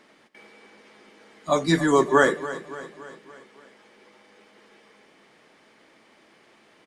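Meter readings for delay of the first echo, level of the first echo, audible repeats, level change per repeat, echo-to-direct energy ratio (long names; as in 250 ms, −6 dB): 284 ms, −15.0 dB, 4, −5.0 dB, −13.5 dB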